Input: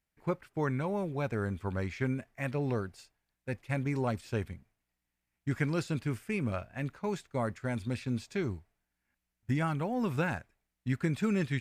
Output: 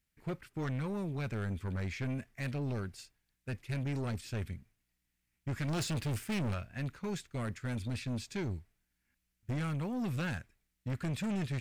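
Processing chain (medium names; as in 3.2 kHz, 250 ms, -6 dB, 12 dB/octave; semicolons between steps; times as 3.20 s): peaking EQ 730 Hz -10 dB 1.8 oct; 5.68–6.54 s: waveshaping leveller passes 2; saturation -35.5 dBFS, distortion -9 dB; trim +4 dB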